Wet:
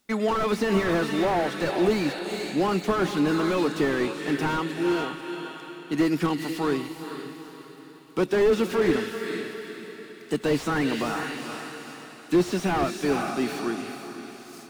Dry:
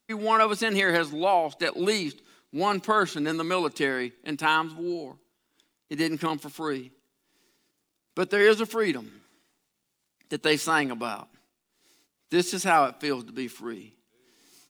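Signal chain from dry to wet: dynamic EQ 820 Hz, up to -6 dB, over -33 dBFS, Q 0.74; diffused feedback echo 0.462 s, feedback 45%, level -10.5 dB; slew limiter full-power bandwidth 31 Hz; gain +6.5 dB

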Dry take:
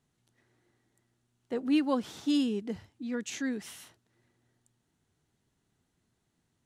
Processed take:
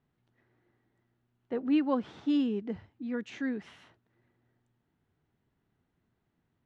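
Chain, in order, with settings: LPF 2400 Hz 12 dB/oct

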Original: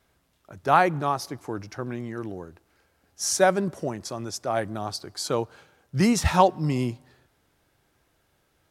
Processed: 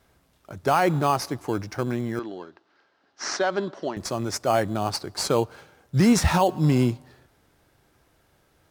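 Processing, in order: in parallel at -9 dB: sample-and-hold 12×; on the sum: limiter -13 dBFS, peak gain reduction 12 dB; 2.19–3.97 speaker cabinet 360–4800 Hz, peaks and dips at 490 Hz -8 dB, 740 Hz -3 dB, 2300 Hz -6 dB; gain +3 dB

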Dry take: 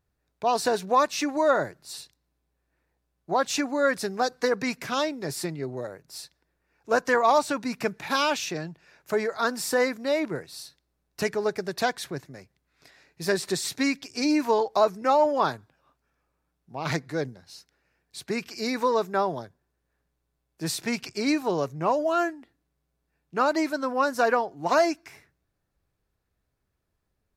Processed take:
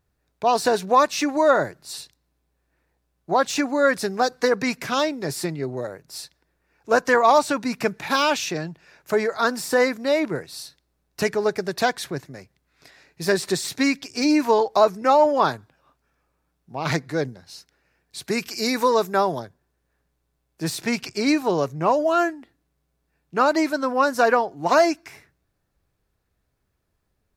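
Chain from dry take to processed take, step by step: de-esser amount 60%; 18.24–19.4 high shelf 6600 Hz +10.5 dB; gain +4.5 dB

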